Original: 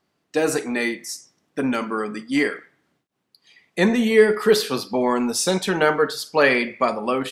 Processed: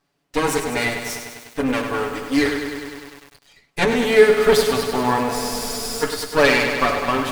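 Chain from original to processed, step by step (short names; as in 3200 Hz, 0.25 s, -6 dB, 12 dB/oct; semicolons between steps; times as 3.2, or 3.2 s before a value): minimum comb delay 7 ms; spectral freeze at 5.33, 0.70 s; lo-fi delay 0.1 s, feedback 80%, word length 7-bit, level -7.5 dB; gain +2 dB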